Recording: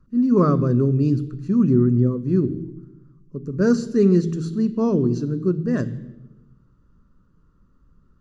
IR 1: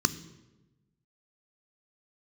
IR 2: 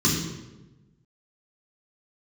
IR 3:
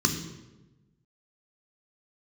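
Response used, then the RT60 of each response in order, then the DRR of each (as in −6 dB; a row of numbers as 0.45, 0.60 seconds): 1; 1.1, 1.1, 1.1 seconds; 13.0, −5.0, 4.0 decibels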